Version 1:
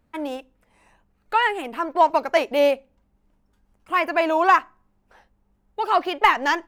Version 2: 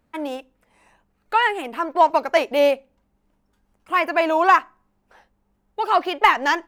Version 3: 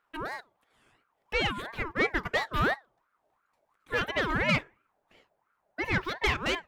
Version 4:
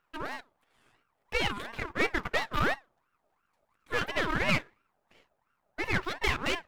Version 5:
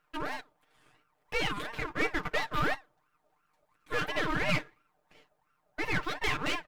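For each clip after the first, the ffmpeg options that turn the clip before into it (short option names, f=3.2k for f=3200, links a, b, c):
-af "lowshelf=f=130:g=-6,volume=1.5dB"
-af "aeval=exprs='(tanh(4.47*val(0)+0.3)-tanh(0.3))/4.47':c=same,aeval=exprs='val(0)*sin(2*PI*1000*n/s+1000*0.4/2.9*sin(2*PI*2.9*n/s))':c=same,volume=-4.5dB"
-af "aeval=exprs='if(lt(val(0),0),0.251*val(0),val(0))':c=same,volume=2dB"
-filter_complex "[0:a]aecho=1:1:6.6:0.65,asplit=2[a][b];[b]alimiter=limit=-23.5dB:level=0:latency=1:release=12,volume=2.5dB[c];[a][c]amix=inputs=2:normalize=0,volume=-7dB"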